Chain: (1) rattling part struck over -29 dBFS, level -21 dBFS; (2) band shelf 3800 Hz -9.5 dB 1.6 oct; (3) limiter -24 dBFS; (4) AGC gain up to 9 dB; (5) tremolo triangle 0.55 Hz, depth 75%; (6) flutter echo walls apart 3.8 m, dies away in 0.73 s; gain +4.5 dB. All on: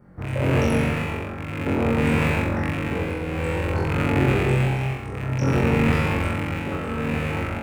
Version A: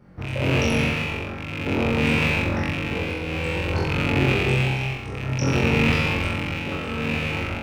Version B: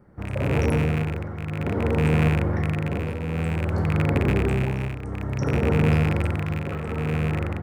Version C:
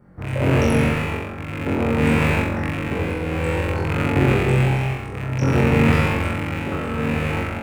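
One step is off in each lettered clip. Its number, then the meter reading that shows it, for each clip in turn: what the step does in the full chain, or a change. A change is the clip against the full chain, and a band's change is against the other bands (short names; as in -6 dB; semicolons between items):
2, 4 kHz band +8.5 dB; 6, echo-to-direct 3.0 dB to none; 3, mean gain reduction 2.0 dB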